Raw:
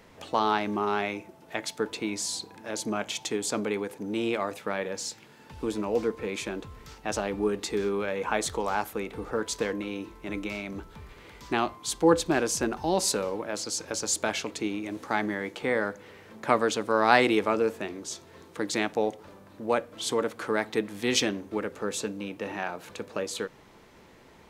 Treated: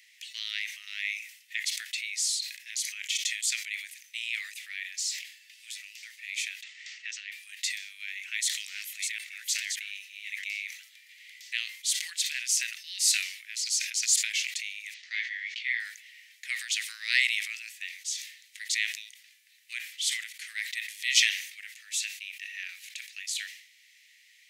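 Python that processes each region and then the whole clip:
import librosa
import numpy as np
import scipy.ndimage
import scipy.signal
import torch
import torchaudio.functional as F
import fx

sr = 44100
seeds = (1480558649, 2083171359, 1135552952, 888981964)

y = fx.chain(x, sr, fx.steep_lowpass(hz=7900.0, slope=48),
    fx.high_shelf(hz=3600.0, db=-9.5),
    fx.band_squash(depth_pct=70), at=(6.63, 7.32))
y = fx.chain(y, sr, fx.reverse_delay(ms=433, wet_db=-4.5),
    fx.highpass(hz=880.0, slope=12), at=(8.32, 10.44))
y = fx.chain(y, sr, fx.lowpass(hz=5300.0, slope=24),
    fx.doubler(ms=17.0, db=-7.0), at=(14.94, 15.8))
y = scipy.signal.sosfilt(scipy.signal.cheby1(6, 1.0, 1900.0, 'highpass', fs=sr, output='sos'), y)
y = fx.sustainer(y, sr, db_per_s=87.0)
y = F.gain(torch.from_numpy(y), 4.0).numpy()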